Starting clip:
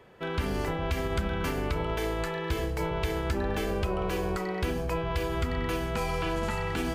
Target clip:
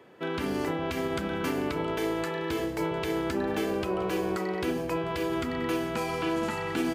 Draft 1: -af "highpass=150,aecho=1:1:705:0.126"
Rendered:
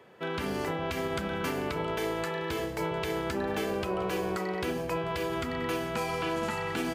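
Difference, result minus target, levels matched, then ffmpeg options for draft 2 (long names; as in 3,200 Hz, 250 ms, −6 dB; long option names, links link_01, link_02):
250 Hz band −2.5 dB
-af "highpass=150,equalizer=frequency=300:width_type=o:width=0.46:gain=8,aecho=1:1:705:0.126"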